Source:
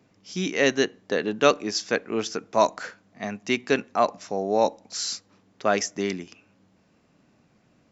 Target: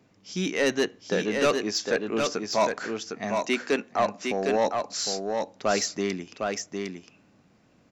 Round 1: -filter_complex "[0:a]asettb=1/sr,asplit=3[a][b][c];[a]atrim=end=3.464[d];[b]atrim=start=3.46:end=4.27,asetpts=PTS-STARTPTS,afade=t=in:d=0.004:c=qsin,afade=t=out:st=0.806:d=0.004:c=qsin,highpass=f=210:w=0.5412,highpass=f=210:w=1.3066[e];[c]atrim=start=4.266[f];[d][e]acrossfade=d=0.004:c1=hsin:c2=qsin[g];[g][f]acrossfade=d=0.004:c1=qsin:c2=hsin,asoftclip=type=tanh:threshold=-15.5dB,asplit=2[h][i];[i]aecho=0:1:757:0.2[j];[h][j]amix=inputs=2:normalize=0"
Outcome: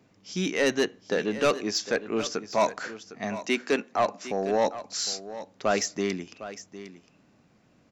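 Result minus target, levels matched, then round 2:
echo-to-direct -9.5 dB
-filter_complex "[0:a]asettb=1/sr,asplit=3[a][b][c];[a]atrim=end=3.464[d];[b]atrim=start=3.46:end=4.27,asetpts=PTS-STARTPTS,afade=t=in:d=0.004:c=qsin,afade=t=out:st=0.806:d=0.004:c=qsin,highpass=f=210:w=0.5412,highpass=f=210:w=1.3066[e];[c]atrim=start=4.266[f];[d][e]acrossfade=d=0.004:c1=hsin:c2=qsin[g];[g][f]acrossfade=d=0.004:c1=qsin:c2=hsin,asoftclip=type=tanh:threshold=-15.5dB,asplit=2[h][i];[i]aecho=0:1:757:0.596[j];[h][j]amix=inputs=2:normalize=0"

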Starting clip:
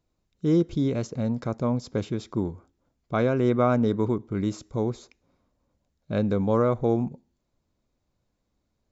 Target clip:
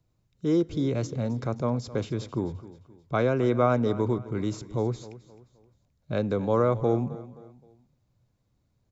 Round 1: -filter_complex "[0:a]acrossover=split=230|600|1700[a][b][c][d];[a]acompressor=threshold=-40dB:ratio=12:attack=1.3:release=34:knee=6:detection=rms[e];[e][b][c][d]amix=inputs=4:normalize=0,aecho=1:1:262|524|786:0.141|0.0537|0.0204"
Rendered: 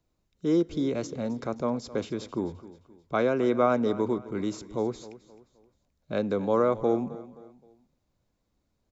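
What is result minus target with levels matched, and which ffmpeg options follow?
125 Hz band -8.5 dB
-filter_complex "[0:a]acrossover=split=230|600|1700[a][b][c][d];[a]acompressor=threshold=-40dB:ratio=12:attack=1.3:release=34:knee=6:detection=rms,equalizer=f=120:w=1.5:g=13.5[e];[e][b][c][d]amix=inputs=4:normalize=0,aecho=1:1:262|524|786:0.141|0.0537|0.0204"

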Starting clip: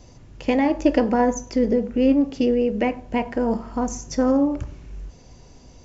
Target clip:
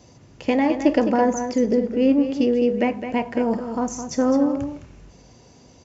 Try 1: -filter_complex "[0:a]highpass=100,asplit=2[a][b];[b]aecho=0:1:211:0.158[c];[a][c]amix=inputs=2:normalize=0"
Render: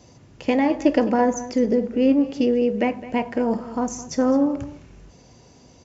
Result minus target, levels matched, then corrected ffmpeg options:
echo-to-direct -7 dB
-filter_complex "[0:a]highpass=100,asplit=2[a][b];[b]aecho=0:1:211:0.355[c];[a][c]amix=inputs=2:normalize=0"

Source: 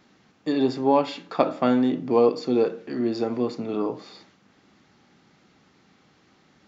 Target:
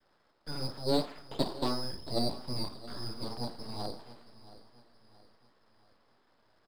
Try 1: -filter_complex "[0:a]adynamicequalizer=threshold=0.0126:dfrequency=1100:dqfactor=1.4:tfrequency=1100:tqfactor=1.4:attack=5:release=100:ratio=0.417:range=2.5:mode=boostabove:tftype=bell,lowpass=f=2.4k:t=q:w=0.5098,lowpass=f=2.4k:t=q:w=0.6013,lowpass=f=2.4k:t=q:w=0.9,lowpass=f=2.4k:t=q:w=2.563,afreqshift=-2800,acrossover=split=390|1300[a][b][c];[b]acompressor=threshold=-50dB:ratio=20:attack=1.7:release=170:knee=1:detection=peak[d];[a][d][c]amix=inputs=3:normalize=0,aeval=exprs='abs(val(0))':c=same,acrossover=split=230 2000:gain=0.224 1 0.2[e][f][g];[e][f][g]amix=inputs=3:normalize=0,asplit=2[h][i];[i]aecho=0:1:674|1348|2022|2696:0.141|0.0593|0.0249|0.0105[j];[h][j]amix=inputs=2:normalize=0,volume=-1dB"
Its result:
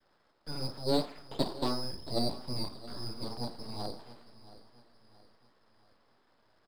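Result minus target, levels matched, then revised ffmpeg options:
compressor: peak gain reduction +7 dB
-filter_complex "[0:a]adynamicequalizer=threshold=0.0126:dfrequency=1100:dqfactor=1.4:tfrequency=1100:tqfactor=1.4:attack=5:release=100:ratio=0.417:range=2.5:mode=boostabove:tftype=bell,lowpass=f=2.4k:t=q:w=0.5098,lowpass=f=2.4k:t=q:w=0.6013,lowpass=f=2.4k:t=q:w=0.9,lowpass=f=2.4k:t=q:w=2.563,afreqshift=-2800,acrossover=split=390|1300[a][b][c];[b]acompressor=threshold=-42.5dB:ratio=20:attack=1.7:release=170:knee=1:detection=peak[d];[a][d][c]amix=inputs=3:normalize=0,aeval=exprs='abs(val(0))':c=same,acrossover=split=230 2000:gain=0.224 1 0.2[e][f][g];[e][f][g]amix=inputs=3:normalize=0,asplit=2[h][i];[i]aecho=0:1:674|1348|2022|2696:0.141|0.0593|0.0249|0.0105[j];[h][j]amix=inputs=2:normalize=0,volume=-1dB"

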